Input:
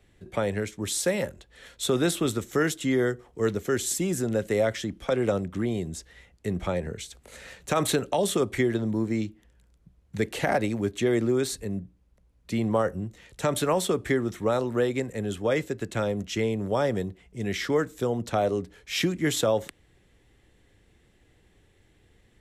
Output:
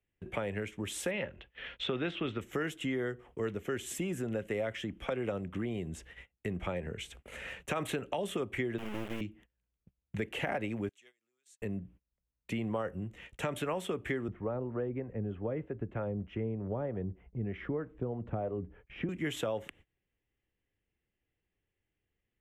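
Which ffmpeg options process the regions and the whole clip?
ffmpeg -i in.wav -filter_complex "[0:a]asettb=1/sr,asplit=3[link_01][link_02][link_03];[link_01]atrim=end=1.114[link_04];[link_02]atrim=start=1.11:end=2.41,asetpts=PTS-STARTPTS,afade=type=in:duration=0.004:curve=qsin,afade=type=out:start_time=1.296:duration=0.004:curve=qsin,lowpass=frequency=3800:width=0.5412,lowpass=frequency=3800:width=1.3066,highshelf=frequency=2300:gain=7.5[link_05];[link_03]atrim=start=2.406[link_06];[link_04][link_05]acrossfade=duration=0.004:curve1=hsin:curve2=qsin[link_07];[link_07][link_06]acrossfade=duration=0.004:curve1=qsin:curve2=hsin,asettb=1/sr,asplit=3[link_08][link_09][link_10];[link_08]atrim=end=8.784[link_11];[link_09]atrim=start=8.78:end=9.21,asetpts=PTS-STARTPTS,afade=type=in:duration=0.004:curve=qsin,afade=type=out:start_time=0.426:duration=0.004:curve=qsin,highpass=170,lowpass=6500,acrusher=bits=3:dc=4:mix=0:aa=0.000001[link_12];[link_10]atrim=start=9.206[link_13];[link_11][link_12]acrossfade=duration=0.004:curve1=hsin:curve2=qsin[link_14];[link_14][link_13]acrossfade=duration=0.004:curve1=qsin:curve2=hsin,asettb=1/sr,asplit=3[link_15][link_16][link_17];[link_15]atrim=end=10.894[link_18];[link_16]atrim=start=10.89:end=11.62,asetpts=PTS-STARTPTS,afade=type=in:duration=0.004:curve=qsin,afade=type=out:start_time=0.726:duration=0.004:curve=qsin,bandpass=frequency=6900:width_type=q:width=1.8,acompressor=threshold=-59dB:ratio=2:attack=3.2:release=140:knee=1:detection=peak[link_19];[link_17]atrim=start=11.616[link_20];[link_18][link_19]acrossfade=duration=0.004:curve1=hsin:curve2=qsin[link_21];[link_21][link_20]acrossfade=duration=0.004:curve1=qsin:curve2=hsin,asettb=1/sr,asplit=3[link_22][link_23][link_24];[link_22]atrim=end=14.284[link_25];[link_23]atrim=start=14.28:end=19.09,asetpts=PTS-STARTPTS,afade=type=in:duration=0.004:curve=qsin,afade=type=out:start_time=4.806:duration=0.004:curve=qsin,lowshelf=frequency=110:gain=10.5,acrossover=split=450[link_26][link_27];[link_26]aeval=exprs='val(0)*(1-0.5/2+0.5/2*cos(2*PI*3.2*n/s))':channel_layout=same[link_28];[link_27]aeval=exprs='val(0)*(1-0.5/2-0.5/2*cos(2*PI*3.2*n/s))':channel_layout=same[link_29];[link_28][link_29]amix=inputs=2:normalize=0,lowpass=1100[link_30];[link_24]atrim=start=19.086[link_31];[link_25][link_30]acrossfade=duration=0.004:curve1=hsin:curve2=qsin[link_32];[link_32][link_31]acrossfade=duration=0.004:curve1=qsin:curve2=hsin,agate=range=-25dB:threshold=-50dB:ratio=16:detection=peak,highshelf=frequency=3500:width_type=q:width=3:gain=-7,acompressor=threshold=-36dB:ratio=2.5" out.wav

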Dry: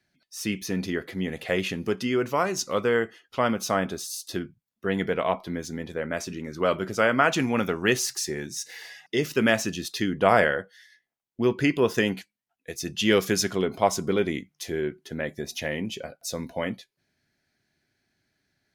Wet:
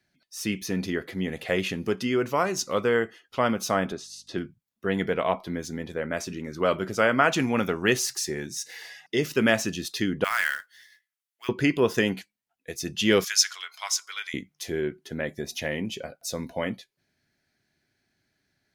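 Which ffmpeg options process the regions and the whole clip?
ffmpeg -i in.wav -filter_complex "[0:a]asettb=1/sr,asplit=3[link_01][link_02][link_03];[link_01]atrim=end=3.924[link_04];[link_02]atrim=start=3.92:end=4.38,asetpts=PTS-STARTPTS,afade=type=in:duration=0.004:curve=qsin,afade=type=out:start_time=0.456:duration=0.004:curve=qsin,highshelf=frequency=5600:gain=-10.5,aeval=exprs='val(0)+0.000794*(sin(2*PI*50*n/s)+sin(2*PI*2*50*n/s)/2+sin(2*PI*3*50*n/s)/3+sin(2*PI*4*50*n/s)/4+sin(2*PI*5*50*n/s)/5)':channel_layout=same,highpass=110,lowpass=7600[link_05];[link_03]atrim=start=4.376[link_06];[link_04][link_05]acrossfade=duration=0.004:curve1=hsin:curve2=qsin[link_07];[link_07][link_06]acrossfade=duration=0.004:curve1=qsin:curve2=hsin,asettb=1/sr,asplit=3[link_08][link_09][link_10];[link_08]atrim=end=10.244[link_11];[link_09]atrim=start=10.24:end=11.49,asetpts=PTS-STARTPTS,afade=type=in:duration=0.004:curve=qsin,afade=type=out:start_time=1.246:duration=0.004:curve=qsin,highpass=frequency=1300:width=0.5412,highpass=frequency=1300:width=1.3066,equalizer=frequency=11000:width=2:gain=4.5,acrusher=bits=3:mode=log:mix=0:aa=0.000001[link_12];[link_10]atrim=start=11.486[link_13];[link_11][link_12]acrossfade=duration=0.004:curve1=hsin:curve2=qsin[link_14];[link_14][link_13]acrossfade=duration=0.004:curve1=qsin:curve2=hsin,asettb=1/sr,asplit=3[link_15][link_16][link_17];[link_15]atrim=end=13.244[link_18];[link_16]atrim=start=13.24:end=14.34,asetpts=PTS-STARTPTS,afade=type=in:duration=0.004:curve=qsin,afade=type=out:start_time=1.096:duration=0.004:curve=qsin,highpass=frequency=1300:width=0.5412,highpass=frequency=1300:width=1.3066,equalizer=frequency=5500:width=1.3:gain=7.5[link_19];[link_17]atrim=start=14.336[link_20];[link_18][link_19]acrossfade=duration=0.004:curve1=hsin:curve2=qsin[link_21];[link_21][link_20]acrossfade=duration=0.004:curve1=qsin:curve2=hsin" out.wav

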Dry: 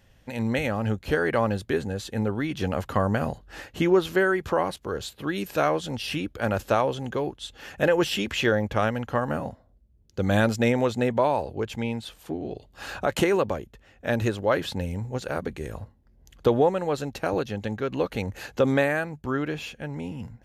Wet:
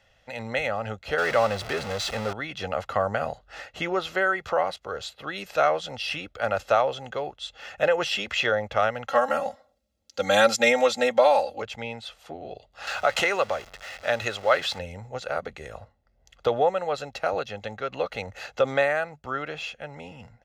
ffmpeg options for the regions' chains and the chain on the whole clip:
ffmpeg -i in.wav -filter_complex "[0:a]asettb=1/sr,asplit=3[link_01][link_02][link_03];[link_01]atrim=end=1.184[link_04];[link_02]atrim=start=1.18:end=2.33,asetpts=PTS-STARTPTS,afade=type=in:duration=0.004:curve=qsin,afade=type=out:start_time=1.146:duration=0.004:curve=qsin,aeval=exprs='val(0)+0.5*0.0501*sgn(val(0))':channel_layout=same,bandreject=frequency=6900:width=28[link_05];[link_03]atrim=start=2.326[link_06];[link_04][link_05]acrossfade=duration=0.004:curve1=hsin:curve2=qsin[link_07];[link_07][link_06]acrossfade=duration=0.004:curve1=qsin:curve2=hsin,asettb=1/sr,asplit=3[link_08][link_09][link_10];[link_08]atrim=end=9.084[link_11];[link_09]atrim=start=9.08:end=11.62,asetpts=PTS-STARTPTS,afade=type=in:duration=0.004:curve=qsin,afade=type=out:start_time=2.536:duration=0.004:curve=qsin,highpass=130,highshelf=frequency=3400:gain=11.5,aecho=1:1:3.7:0.97,atrim=end_sample=112014[link_12];[link_10]atrim=start=11.616[link_13];[link_11][link_12]acrossfade=duration=0.004:curve1=hsin:curve2=qsin[link_14];[link_14][link_13]acrossfade=duration=0.004:curve1=qsin:curve2=hsin,asettb=1/sr,asplit=3[link_15][link_16][link_17];[link_15]atrim=end=12.874[link_18];[link_16]atrim=start=12.87:end=14.79,asetpts=PTS-STARTPTS,afade=type=in:duration=0.004:curve=qsin,afade=type=out:start_time=1.916:duration=0.004:curve=qsin,aeval=exprs='val(0)+0.5*0.0133*sgn(val(0))':channel_layout=same,tiltshelf=frequency=650:gain=-4[link_19];[link_17]atrim=start=14.786[link_20];[link_18][link_19]acrossfade=duration=0.004:curve1=hsin:curve2=qsin[link_21];[link_21][link_20]acrossfade=duration=0.004:curve1=qsin:curve2=hsin,acrossover=split=440 6800:gain=0.224 1 0.178[link_22][link_23][link_24];[link_22][link_23][link_24]amix=inputs=3:normalize=0,aecho=1:1:1.5:0.48,volume=1dB" out.wav

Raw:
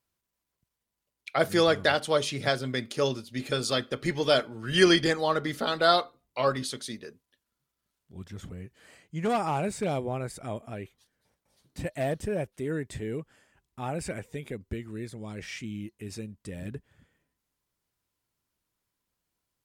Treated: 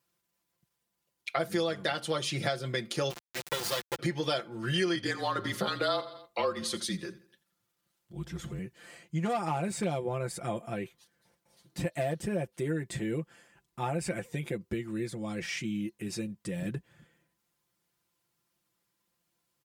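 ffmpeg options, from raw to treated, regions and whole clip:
ffmpeg -i in.wav -filter_complex "[0:a]asettb=1/sr,asplit=3[link_01][link_02][link_03];[link_01]atrim=end=3.104[link_04];[link_02]atrim=start=3.1:end=3.99,asetpts=PTS-STARTPTS,afade=type=in:duration=0.004:curve=qsin,afade=type=out:start_time=0.886:duration=0.004:curve=qsin,highpass=340,highshelf=frequency=7000:gain=-4.5,acrusher=bits=3:dc=4:mix=0:aa=0.000001[link_05];[link_03]atrim=start=3.986[link_06];[link_04][link_05]acrossfade=duration=0.004:curve1=hsin:curve2=qsin[link_07];[link_07][link_06]acrossfade=duration=0.004:curve1=qsin:curve2=hsin,asettb=1/sr,asplit=3[link_08][link_09][link_10];[link_08]atrim=end=4.954[link_11];[link_09]atrim=start=4.95:end=8.59,asetpts=PTS-STARTPTS,afade=type=in:duration=0.004:curve=qsin,afade=type=out:start_time=3.636:duration=0.004:curve=qsin,afreqshift=-34,aecho=1:1:84|168|252:0.119|0.0511|0.022,atrim=end_sample=160524[link_12];[link_10]atrim=start=8.586[link_13];[link_11][link_12]acrossfade=duration=0.004:curve1=hsin:curve2=qsin[link_14];[link_14][link_13]acrossfade=duration=0.004:curve1=qsin:curve2=hsin,highpass=79,aecho=1:1:5.8:0.75,acompressor=threshold=-30dB:ratio=5,volume=2dB" out.wav

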